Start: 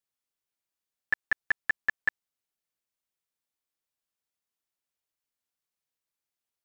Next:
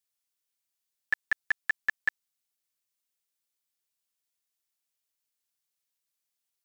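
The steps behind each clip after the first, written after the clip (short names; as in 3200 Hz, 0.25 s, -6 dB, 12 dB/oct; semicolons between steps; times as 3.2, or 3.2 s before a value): high shelf 2200 Hz +11 dB; gain -5 dB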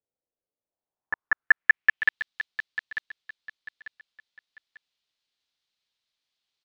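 feedback echo 0.894 s, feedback 31%, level -10 dB; low-pass sweep 540 Hz -> 3900 Hz, 0.62–2.22; gain +4 dB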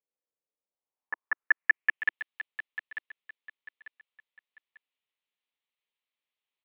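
speaker cabinet 280–2800 Hz, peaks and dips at 330 Hz -5 dB, 680 Hz -6 dB, 1500 Hz -8 dB; gain -2 dB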